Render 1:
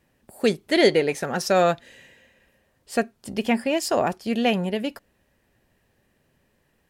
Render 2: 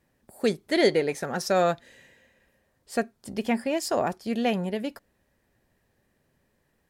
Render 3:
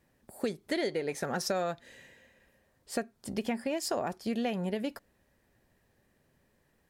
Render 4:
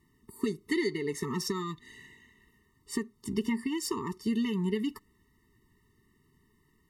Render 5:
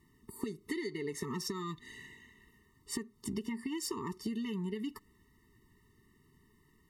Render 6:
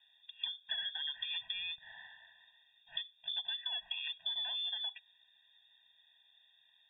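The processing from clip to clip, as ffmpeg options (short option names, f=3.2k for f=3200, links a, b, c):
-af "equalizer=f=2.8k:w=3.6:g=-5,volume=-3.5dB"
-af "acompressor=threshold=-28dB:ratio=10"
-af "afftfilt=real='re*eq(mod(floor(b*sr/1024/440),2),0)':imag='im*eq(mod(floor(b*sr/1024/440),2),0)':win_size=1024:overlap=0.75,volume=4dB"
-af "acompressor=threshold=-35dB:ratio=10,volume=1dB"
-af "lowpass=f=3.1k:t=q:w=0.5098,lowpass=f=3.1k:t=q:w=0.6013,lowpass=f=3.1k:t=q:w=0.9,lowpass=f=3.1k:t=q:w=2.563,afreqshift=-3700,volume=-1.5dB"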